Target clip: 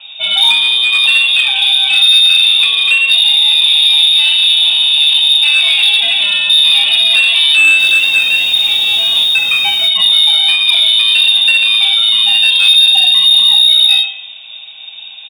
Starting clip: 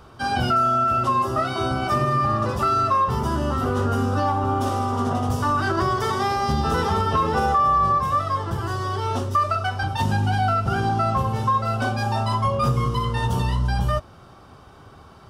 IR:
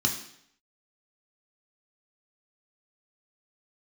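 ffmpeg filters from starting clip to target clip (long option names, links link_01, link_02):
-filter_complex "[0:a]highshelf=frequency=2400:gain=-10,asplit=2[link_01][link_02];[link_02]adelay=90,highpass=300,lowpass=3400,asoftclip=type=hard:threshold=-20.5dB,volume=-17dB[link_03];[link_01][link_03]amix=inputs=2:normalize=0[link_04];[1:a]atrim=start_sample=2205[link_05];[link_04][link_05]afir=irnorm=-1:irlink=0,asoftclip=type=tanh:threshold=-0.5dB,lowpass=frequency=3200:width_type=q:width=0.5098,lowpass=frequency=3200:width_type=q:width=0.6013,lowpass=frequency=3200:width_type=q:width=0.9,lowpass=frequency=3200:width_type=q:width=2.563,afreqshift=-3800,acontrast=45,highpass=frequency=230:poles=1,asplit=3[link_06][link_07][link_08];[link_06]afade=type=out:start_time=7.78:duration=0.02[link_09];[link_07]acrusher=bits=3:mix=0:aa=0.5,afade=type=in:start_time=7.78:duration=0.02,afade=type=out:start_time=9.87:duration=0.02[link_10];[link_08]afade=type=in:start_time=9.87:duration=0.02[link_11];[link_09][link_10][link_11]amix=inputs=3:normalize=0,tiltshelf=frequency=1100:gain=4,volume=1dB"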